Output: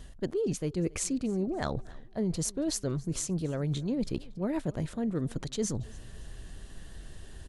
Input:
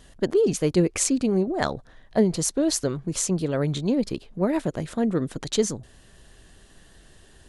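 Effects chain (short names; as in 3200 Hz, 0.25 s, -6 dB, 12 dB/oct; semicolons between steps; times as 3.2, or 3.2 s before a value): low shelf 160 Hz +10 dB; reverse; compressor 4:1, threshold -30 dBFS, peak gain reduction 15.5 dB; reverse; feedback echo 0.279 s, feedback 39%, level -23.5 dB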